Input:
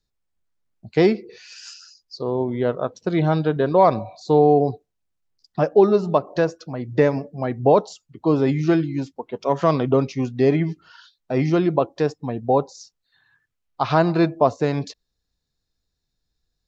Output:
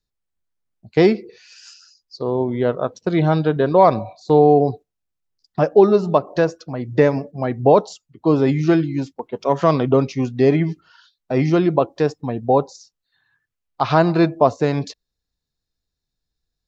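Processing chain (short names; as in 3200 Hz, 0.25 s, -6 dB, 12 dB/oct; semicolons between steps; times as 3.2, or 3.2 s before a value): gate -36 dBFS, range -6 dB; gain +2.5 dB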